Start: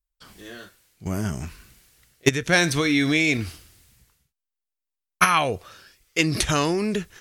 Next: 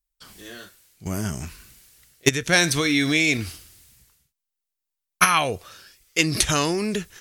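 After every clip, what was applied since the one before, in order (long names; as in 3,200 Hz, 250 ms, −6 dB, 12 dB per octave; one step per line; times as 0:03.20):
high-shelf EQ 3,500 Hz +7 dB
level −1 dB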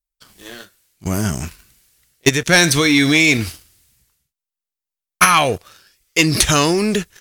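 leveller curve on the samples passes 2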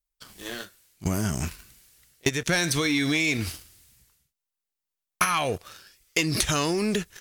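downward compressor 6 to 1, threshold −22 dBFS, peak gain reduction 13.5 dB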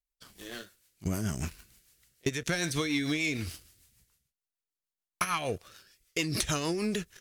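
rotating-speaker cabinet horn 6.7 Hz
level −4 dB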